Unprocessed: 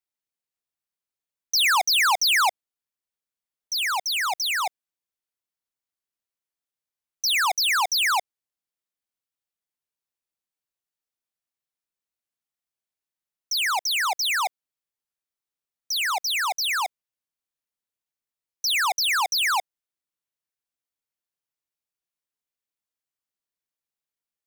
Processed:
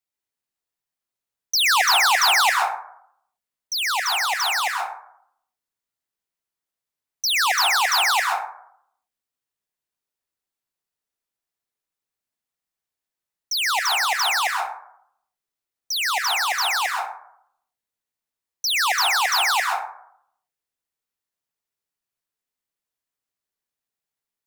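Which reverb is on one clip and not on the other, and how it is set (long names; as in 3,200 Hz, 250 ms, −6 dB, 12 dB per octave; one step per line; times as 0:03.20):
dense smooth reverb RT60 0.68 s, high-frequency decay 0.4×, pre-delay 115 ms, DRR 1 dB
level +1 dB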